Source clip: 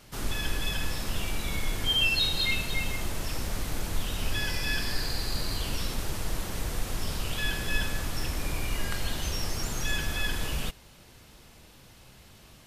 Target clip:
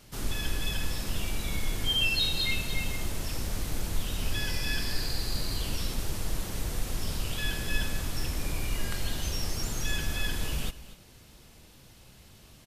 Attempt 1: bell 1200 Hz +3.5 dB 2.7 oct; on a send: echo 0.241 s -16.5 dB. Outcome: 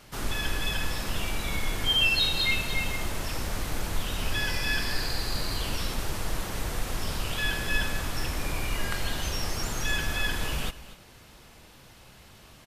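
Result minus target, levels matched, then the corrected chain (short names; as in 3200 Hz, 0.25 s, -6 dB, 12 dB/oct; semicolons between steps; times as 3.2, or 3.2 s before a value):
1000 Hz band +4.0 dB
bell 1200 Hz -4 dB 2.7 oct; on a send: echo 0.241 s -16.5 dB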